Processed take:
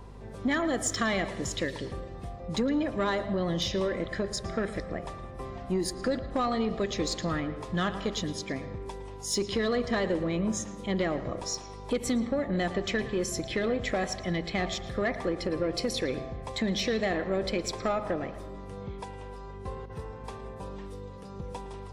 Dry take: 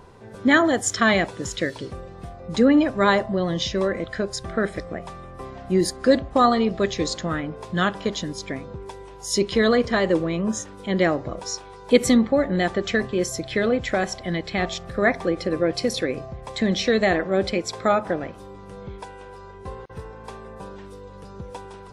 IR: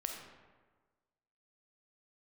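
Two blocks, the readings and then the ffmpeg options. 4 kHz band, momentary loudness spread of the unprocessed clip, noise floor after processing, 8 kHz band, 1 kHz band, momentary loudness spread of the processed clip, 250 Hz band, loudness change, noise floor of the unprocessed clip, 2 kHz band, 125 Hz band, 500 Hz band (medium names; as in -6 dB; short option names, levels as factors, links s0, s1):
-5.5 dB, 21 LU, -43 dBFS, -5.0 dB, -9.0 dB, 13 LU, -8.0 dB, -8.5 dB, -42 dBFS, -9.5 dB, -5.0 dB, -8.0 dB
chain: -filter_complex "[0:a]bandreject=f=1500:w=11,acompressor=threshold=0.1:ratio=6,asoftclip=type=tanh:threshold=0.15,aeval=exprs='val(0)+0.00794*(sin(2*PI*50*n/s)+sin(2*PI*2*50*n/s)/2+sin(2*PI*3*50*n/s)/3+sin(2*PI*4*50*n/s)/4+sin(2*PI*5*50*n/s)/5)':c=same,asplit=2[s0][s1];[1:a]atrim=start_sample=2205,lowpass=5000,adelay=112[s2];[s1][s2]afir=irnorm=-1:irlink=0,volume=0.237[s3];[s0][s3]amix=inputs=2:normalize=0,volume=0.708"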